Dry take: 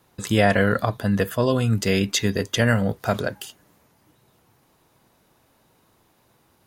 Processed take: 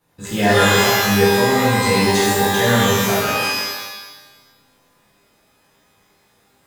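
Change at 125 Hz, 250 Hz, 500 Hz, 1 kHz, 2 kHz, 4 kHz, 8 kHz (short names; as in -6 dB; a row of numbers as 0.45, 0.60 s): +1.5, +4.0, +6.0, +10.5, +8.5, +10.0, +10.0 dB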